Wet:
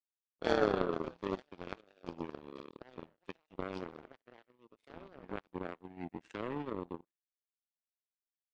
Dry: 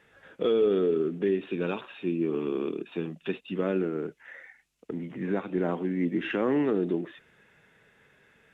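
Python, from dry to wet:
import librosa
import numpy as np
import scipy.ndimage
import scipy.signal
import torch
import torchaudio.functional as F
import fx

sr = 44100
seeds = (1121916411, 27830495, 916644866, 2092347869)

y = fx.echo_pitch(x, sr, ms=118, semitones=5, count=2, db_per_echo=-6.0)
y = fx.low_shelf(y, sr, hz=120.0, db=8.0, at=(0.73, 1.22))
y = y + 10.0 ** (-18.5 / 20.0) * np.pad(y, (int(72 * sr / 1000.0), 0))[:len(y)]
y = fx.power_curve(y, sr, exponent=3.0)
y = F.gain(torch.from_numpy(y), 1.0).numpy()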